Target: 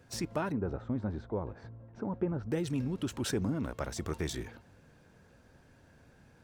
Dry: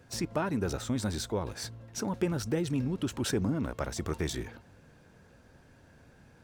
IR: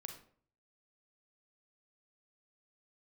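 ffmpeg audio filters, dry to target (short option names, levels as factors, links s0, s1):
-filter_complex "[0:a]asettb=1/sr,asplit=3[s0][s1][s2];[s0]atrim=end=0.524[s3];[s1]atrim=start=0.52:end=2.52,asetpts=PTS-STARTPTS,afade=t=in:d=0.004:c=qsin,afade=t=out:st=1.996:d=0.004:c=qsin,lowpass=1100[s4];[s2]atrim=start=2.516[s5];[s3][s4]acrossfade=d=0.004:c1=hsin:c2=qsin[s6];[s6][s5]acrossfade=d=0.004:c1=qsin:c2=hsin,volume=0.75"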